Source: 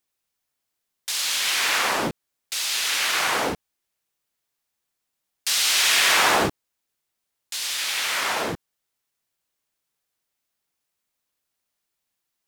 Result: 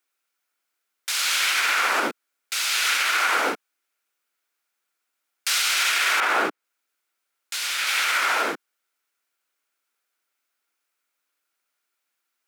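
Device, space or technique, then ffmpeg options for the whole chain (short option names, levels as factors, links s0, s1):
laptop speaker: -filter_complex "[0:a]highpass=f=260:w=0.5412,highpass=f=260:w=1.3066,equalizer=f=1400:t=o:w=0.34:g=11,equalizer=f=2300:t=o:w=0.46:g=5.5,alimiter=limit=0.251:level=0:latency=1:release=66,asettb=1/sr,asplit=3[s0][s1][s2];[s0]atrim=end=6.204[s3];[s1]atrim=start=6.2:end=7.87,asetpts=PTS-STARTPTS,afade=t=in:d=0.004:c=qsin,afade=t=out:st=1.666:d=0.004:c=qsin,adynamicequalizer=threshold=0.0126:dfrequency=3600:dqfactor=0.7:tfrequency=3600:tqfactor=0.7:attack=5:release=100:ratio=0.375:range=3:mode=cutabove:tftype=highshelf[s4];[s2]atrim=start=7.866[s5];[s3][s4]acrossfade=d=0.004:c1=hsin:c2=qsin[s6];[s6][s5]acrossfade=d=0.004:c1=qsin:c2=hsin"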